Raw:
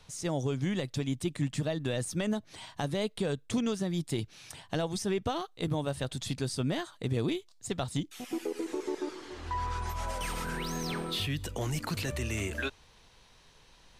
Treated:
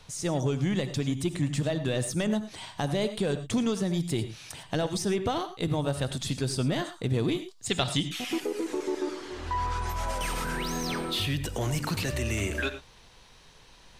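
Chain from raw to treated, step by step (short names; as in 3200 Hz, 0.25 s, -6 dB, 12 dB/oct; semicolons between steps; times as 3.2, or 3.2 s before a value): non-linear reverb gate 0.13 s rising, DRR 11 dB; in parallel at -7.5 dB: soft clip -32 dBFS, distortion -10 dB; 7.66–8.4 on the sum: bell 3000 Hz +10.5 dB 1.8 oct; gain +1.5 dB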